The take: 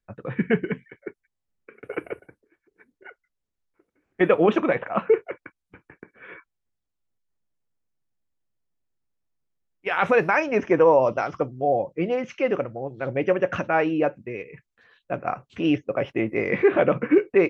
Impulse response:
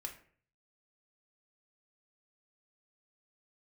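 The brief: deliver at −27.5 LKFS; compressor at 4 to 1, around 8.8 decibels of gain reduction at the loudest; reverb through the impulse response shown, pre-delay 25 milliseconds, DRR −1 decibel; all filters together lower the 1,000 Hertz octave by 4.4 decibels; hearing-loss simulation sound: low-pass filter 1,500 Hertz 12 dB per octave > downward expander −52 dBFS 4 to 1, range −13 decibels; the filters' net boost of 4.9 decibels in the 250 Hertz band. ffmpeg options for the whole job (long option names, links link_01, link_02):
-filter_complex "[0:a]equalizer=frequency=250:width_type=o:gain=7.5,equalizer=frequency=1000:width_type=o:gain=-6,acompressor=threshold=-20dB:ratio=4,asplit=2[link_01][link_02];[1:a]atrim=start_sample=2205,adelay=25[link_03];[link_02][link_03]afir=irnorm=-1:irlink=0,volume=3dB[link_04];[link_01][link_04]amix=inputs=2:normalize=0,lowpass=1500,agate=range=-13dB:threshold=-52dB:ratio=4,volume=-4dB"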